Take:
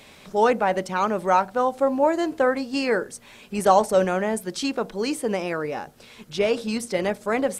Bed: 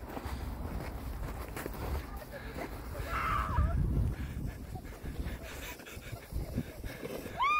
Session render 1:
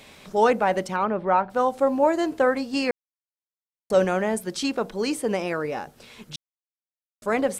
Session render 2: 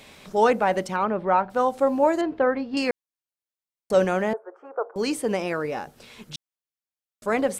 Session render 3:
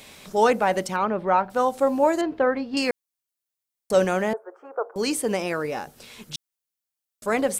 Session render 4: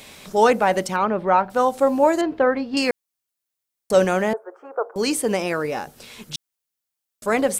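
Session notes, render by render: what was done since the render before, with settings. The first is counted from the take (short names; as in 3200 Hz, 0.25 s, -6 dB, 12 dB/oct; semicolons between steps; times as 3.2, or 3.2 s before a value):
0.96–1.5 air absorption 360 m; 2.91–3.9 mute; 6.36–7.22 mute
2.21–2.77 air absorption 330 m; 4.33–4.96 elliptic band-pass 440–1400 Hz, stop band 50 dB
high shelf 5100 Hz +8.5 dB
gain +3 dB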